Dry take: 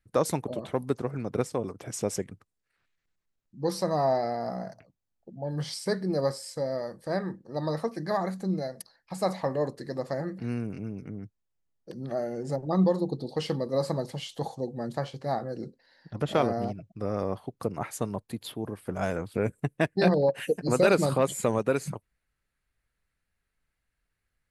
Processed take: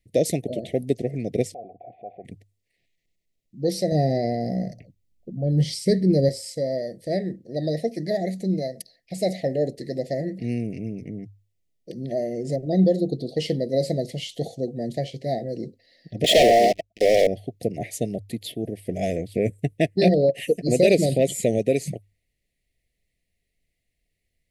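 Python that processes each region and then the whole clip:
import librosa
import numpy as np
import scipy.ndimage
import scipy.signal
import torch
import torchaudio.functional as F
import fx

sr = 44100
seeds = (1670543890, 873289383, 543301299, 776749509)

y = fx.chain(x, sr, fx.formant_cascade(vowel='a'),
    fx.peak_eq(hz=830.0, db=8.5, octaves=0.49),
    fx.env_flatten(amount_pct=50), at=(1.54, 2.25))
y = fx.chain(y, sr, fx.low_shelf(hz=230.0, db=11.5),
    fx.notch(hz=660.0, q=7.6), at=(3.92, 6.29))
y = fx.chain(y, sr, fx.highpass(hz=600.0, slope=12),
    fx.leveller(passes=5), at=(16.24, 17.27))
y = scipy.signal.sosfilt(scipy.signal.cheby1(4, 1.0, [700.0, 1900.0], 'bandstop', fs=sr, output='sos'), y)
y = fx.hum_notches(y, sr, base_hz=50, count=2)
y = y * 10.0 ** (5.5 / 20.0)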